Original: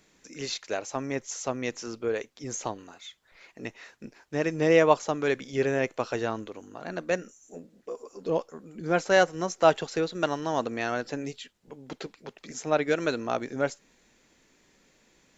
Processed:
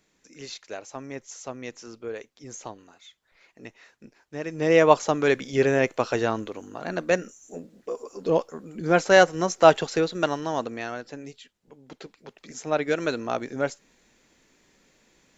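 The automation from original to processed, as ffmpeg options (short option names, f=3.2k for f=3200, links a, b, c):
-af "volume=11.5dB,afade=t=in:st=4.46:d=0.53:silence=0.298538,afade=t=out:st=9.86:d=1.15:silence=0.298538,afade=t=in:st=11.88:d=1.1:silence=0.473151"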